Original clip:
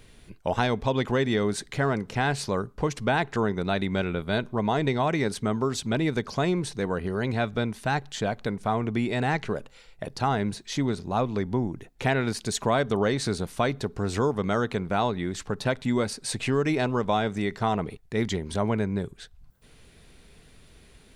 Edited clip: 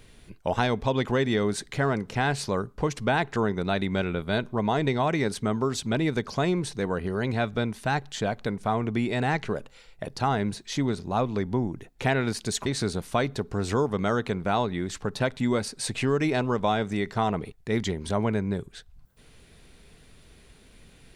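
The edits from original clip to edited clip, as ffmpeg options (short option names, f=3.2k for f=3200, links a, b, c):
-filter_complex "[0:a]asplit=2[a][b];[a]atrim=end=12.662[c];[b]atrim=start=13.108[d];[c][d]acrossfade=d=0.004:c1=hsin:c2=hsin"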